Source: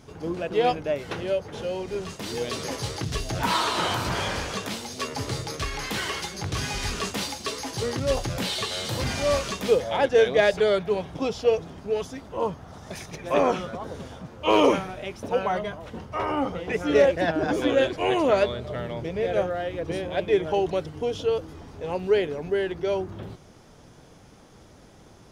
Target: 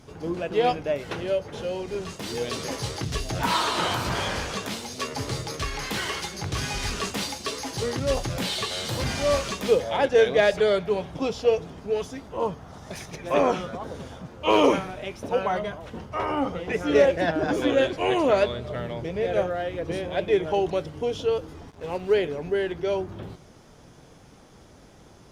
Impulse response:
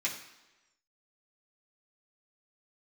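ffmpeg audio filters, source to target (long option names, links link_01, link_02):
-filter_complex "[0:a]asettb=1/sr,asplit=3[link_01][link_02][link_03];[link_01]atrim=end=21.704[link_04];[link_02]atrim=start=21.7:end=22.14,asetpts=PTS-STARTPTS,afade=type=in:duration=0.004:curve=qsin,afade=type=out:start_time=0.436:duration=0.004:curve=qsin,aeval=exprs='sgn(val(0))*max(abs(val(0))-0.00708,0)':channel_layout=same[link_05];[link_03]atrim=start=22.136[link_06];[link_04][link_05]acrossfade=duration=0.004:curve1=hsin:curve2=qsin[link_07];[link_07][link_06]acrossfade=duration=0.004:curve1=qsin:curve2=hsin,asplit=2[link_08][link_09];[1:a]atrim=start_sample=2205,adelay=9[link_10];[link_09][link_10]afir=irnorm=-1:irlink=0,volume=-20.5dB[link_11];[link_08][link_11]amix=inputs=2:normalize=0" -ar 48000 -c:a libopus -b:a 64k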